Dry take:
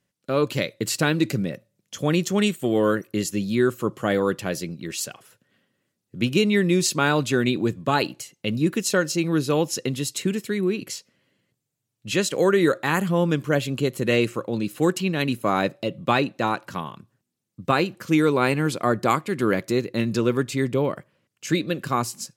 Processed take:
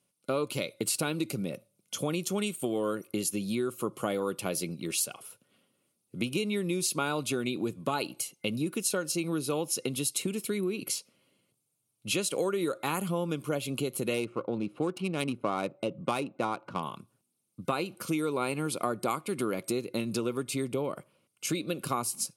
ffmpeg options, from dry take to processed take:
-filter_complex "[0:a]asettb=1/sr,asplit=3[a][b][c];[a]atrim=end=14.144[d];[b]atrim=start=14.14:end=16.83,asetpts=PTS-STARTPTS,afade=t=in:d=0.004:c=qsin,afade=t=out:st=2.686:d=0.004:c=qsin,adynamicsmooth=sensitivity=2:basefreq=1.4k[e];[c]atrim=start=16.826[f];[d][e]acrossfade=d=0.004:c1=hsin:c2=qsin[g];[g][f]acrossfade=d=0.004:c1=qsin:c2=hsin,superequalizer=11b=0.282:16b=3.16,acompressor=threshold=-26dB:ratio=6,highpass=f=190:p=1"

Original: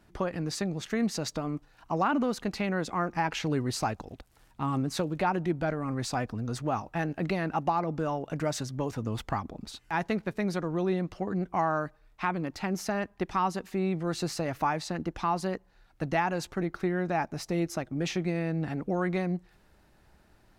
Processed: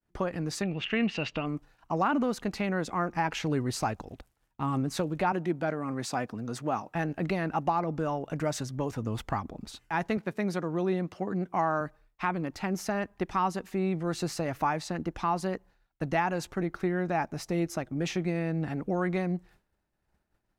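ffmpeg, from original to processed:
-filter_complex "[0:a]asettb=1/sr,asplit=3[a][b][c];[a]atrim=end=0.634[d];[b]atrim=start=0.63:end=1.46,asetpts=PTS-STARTPTS,afade=t=in:d=0.004:c=qsin,afade=t=out:st=0.826:d=0.004:c=qsin,lowpass=f=2.8k:t=q:w=11[e];[c]atrim=start=1.456[f];[d][e]acrossfade=d=0.004:c1=hsin:c2=qsin[g];[g][f]acrossfade=d=0.004:c1=qsin:c2=hsin,asettb=1/sr,asplit=3[h][i][j];[h]atrim=end=5.324[k];[i]atrim=start=5.32:end=6.95,asetpts=PTS-STARTPTS,afade=t=in:d=0.004:c=qsin,afade=t=out:st=1.626:d=0.004:c=qsin,highpass=160[l];[j]atrim=start=6.946[m];[k][l]acrossfade=d=0.004:c1=hsin:c2=qsin[n];[n][m]acrossfade=d=0.004:c1=qsin:c2=hsin,asettb=1/sr,asplit=3[o][p][q];[o]atrim=end=10.174[r];[p]atrim=start=10.17:end=11.81,asetpts=PTS-STARTPTS,afade=t=in:d=0.004:c=qsin,afade=t=out:st=1.636:d=0.004:c=qsin,highpass=120[s];[q]atrim=start=11.806[t];[r][s]acrossfade=d=0.004:c1=hsin:c2=qsin[u];[u][t]acrossfade=d=0.004:c1=qsin:c2=hsin,agate=range=-33dB:threshold=-49dB:ratio=3:detection=peak,equalizer=f=4.3k:t=o:w=0.77:g=-2.5"

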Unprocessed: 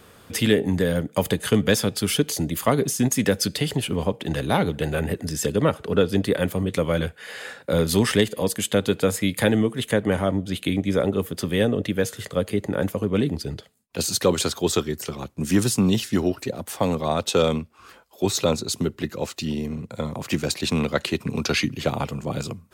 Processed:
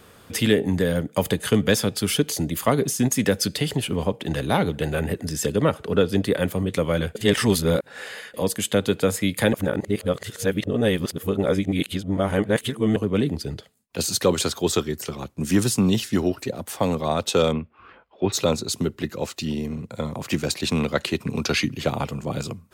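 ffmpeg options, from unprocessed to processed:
-filter_complex "[0:a]asplit=3[a][b][c];[a]afade=t=out:st=17.51:d=0.02[d];[b]lowpass=f=2.9k:w=0.5412,lowpass=f=2.9k:w=1.3066,afade=t=in:st=17.51:d=0.02,afade=t=out:st=18.32:d=0.02[e];[c]afade=t=in:st=18.32:d=0.02[f];[d][e][f]amix=inputs=3:normalize=0,asplit=5[g][h][i][j][k];[g]atrim=end=7.152[l];[h]atrim=start=7.148:end=8.342,asetpts=PTS-STARTPTS,areverse[m];[i]atrim=start=8.338:end=9.532[n];[j]atrim=start=9.528:end=12.962,asetpts=PTS-STARTPTS,areverse[o];[k]atrim=start=12.958[p];[l][m]acrossfade=d=0.004:c1=hsin:c2=hsin[q];[q][n]acrossfade=d=0.004:c1=hsin:c2=hsin[r];[r][o]acrossfade=d=0.004:c1=hsin:c2=hsin[s];[s][p]acrossfade=d=0.004:c1=hsin:c2=hsin"

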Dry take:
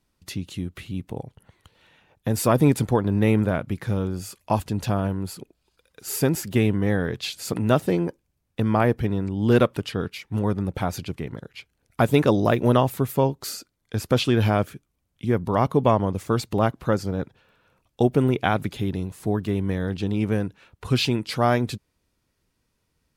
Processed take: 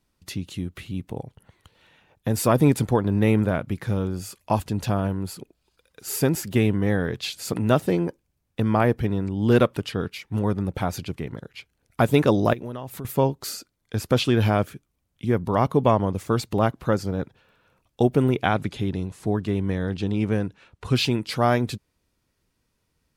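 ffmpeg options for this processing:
-filter_complex "[0:a]asettb=1/sr,asplit=3[a][b][c];[a]atrim=end=12.534[d];[b]atrim=start=12.53:end=13.05,asetpts=PTS-STARTPTS,afade=t=in:d=0.004:c=qsin,afade=t=out:st=0.516:d=0.004:c=qsin,acompressor=threshold=-33dB:ratio=4:attack=3.2:release=140:knee=1:detection=peak[e];[c]atrim=start=13.046[f];[d][e]acrossfade=d=0.004:c1=hsin:c2=qsin[g];[g][f]acrossfade=d=0.004:c1=qsin:c2=hsin,asettb=1/sr,asplit=3[h][i][j];[h]atrim=end=18.464[k];[i]atrim=start=18.46:end=20.94,asetpts=PTS-STARTPTS,afade=t=in:d=0.004:c=qsin,afade=t=out:st=2.476:d=0.004:c=qsin,lowpass=9.4k[l];[j]atrim=start=20.936[m];[k][l]acrossfade=d=0.004:c1=hsin:c2=qsin[n];[n][m]acrossfade=d=0.004:c1=qsin:c2=hsin"

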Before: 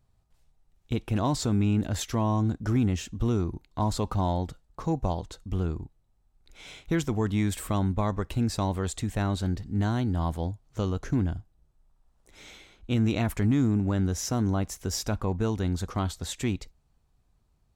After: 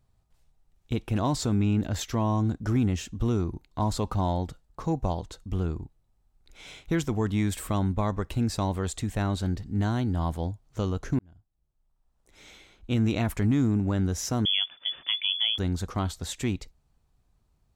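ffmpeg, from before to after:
-filter_complex "[0:a]asettb=1/sr,asplit=3[a][b][c];[a]atrim=end=1.544[d];[b]atrim=start=1.54:end=2.21,asetpts=PTS-STARTPTS,afade=t=in:d=0.004:c=qsin,afade=t=out:st=0.666:d=0.004:c=qsin,equalizer=f=9.6k:t=o:w=0.31:g=-9.5[e];[c]atrim=start=2.206[f];[d][e]acrossfade=d=0.004:c1=hsin:c2=qsin[g];[g][f]acrossfade=d=0.004:c1=qsin:c2=hsin,asettb=1/sr,asplit=3[h][i][j];[h]atrim=end=14.454[k];[i]atrim=start=14.45:end=15.58,asetpts=PTS-STARTPTS,afade=t=in:d=0.004:c=qsin,afade=t=out:st=1.126:d=0.004:c=qsin,lowpass=f=3k:t=q:w=0.5098,lowpass=f=3k:t=q:w=0.6013,lowpass=f=3k:t=q:w=0.9,lowpass=f=3k:t=q:w=2.563,afreqshift=-3500[l];[j]atrim=start=15.576[m];[k][l]acrossfade=d=0.004:c1=hsin:c2=qsin[n];[n][m]acrossfade=d=0.004:c1=qsin:c2=hsin,asplit=2[o][p];[o]atrim=end=11.19,asetpts=PTS-STARTPTS,afade=t=out:st=11.186:d=0.004:c=hsin[q];[p]atrim=start=11.19,asetpts=PTS-STARTPTS,afade=t=in:d=1.73[r];[q][r]concat=n=2:v=0:a=1"

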